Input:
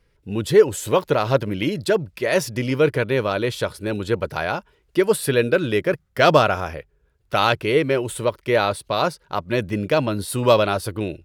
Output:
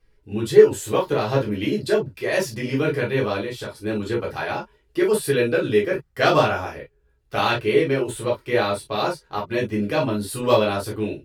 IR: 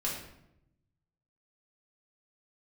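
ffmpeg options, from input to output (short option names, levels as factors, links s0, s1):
-filter_complex "[0:a]asettb=1/sr,asplit=3[s0][s1][s2];[s0]atrim=end=3.384[s3];[s1]atrim=start=3.38:end=3.78,asetpts=PTS-STARTPTS,afade=t=in:d=0.004:c=qsin,afade=t=out:st=0.396:d=0.004:c=qsin,acompressor=threshold=0.0447:ratio=2.5[s4];[s2]atrim=start=3.776[s5];[s3][s4]acrossfade=d=0.004:c1=hsin:c2=qsin[s6];[s6][s5]acrossfade=d=0.004:c1=qsin:c2=hsin[s7];[1:a]atrim=start_sample=2205,afade=t=out:st=0.15:d=0.01,atrim=end_sample=7056,asetrate=70560,aresample=44100[s8];[s7][s8]afir=irnorm=-1:irlink=0,volume=0.794"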